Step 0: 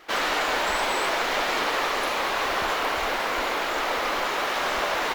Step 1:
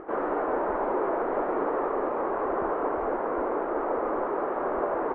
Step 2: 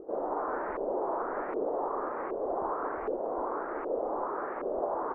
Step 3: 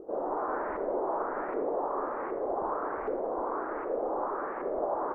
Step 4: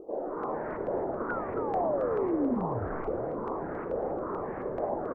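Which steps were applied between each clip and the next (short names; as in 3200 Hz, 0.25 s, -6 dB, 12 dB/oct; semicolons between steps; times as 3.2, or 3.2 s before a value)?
LPF 1300 Hz 24 dB/oct; bell 370 Hz +11.5 dB 1.4 oct; upward compressor, threshold -29 dBFS; gain -5 dB
LFO low-pass saw up 1.3 Hz 450–2400 Hz; gain -8.5 dB
reverb RT60 0.95 s, pre-delay 38 ms, DRR 8 dB
painted sound fall, 1.29–2.58, 230–1500 Hz -29 dBFS; LFO notch saw down 2.3 Hz 640–1800 Hz; frequency-shifting echo 0.273 s, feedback 48%, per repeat -140 Hz, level -7 dB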